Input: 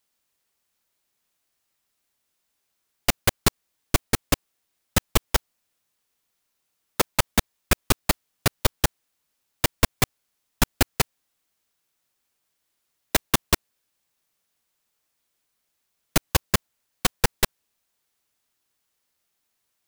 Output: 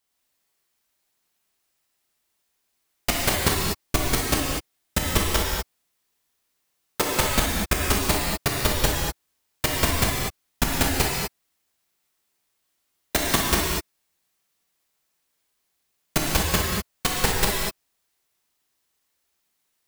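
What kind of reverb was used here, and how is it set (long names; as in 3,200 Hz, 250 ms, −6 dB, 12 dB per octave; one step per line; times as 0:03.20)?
reverb whose tail is shaped and stops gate 270 ms flat, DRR −3.5 dB
level −3 dB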